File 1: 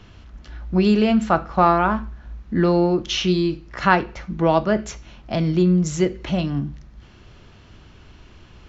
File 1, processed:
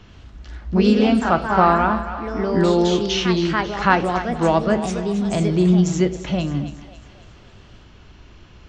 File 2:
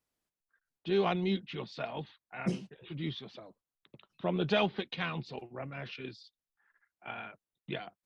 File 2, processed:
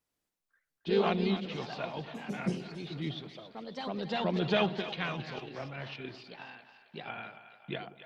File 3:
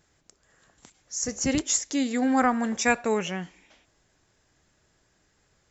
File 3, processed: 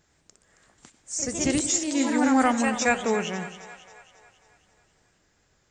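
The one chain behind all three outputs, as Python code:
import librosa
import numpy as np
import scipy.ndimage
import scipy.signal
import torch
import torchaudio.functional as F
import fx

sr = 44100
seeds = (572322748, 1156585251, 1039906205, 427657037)

y = fx.echo_pitch(x, sr, ms=92, semitones=2, count=2, db_per_echo=-6.0)
y = fx.echo_split(y, sr, split_hz=560.0, low_ms=94, high_ms=272, feedback_pct=52, wet_db=-12.0)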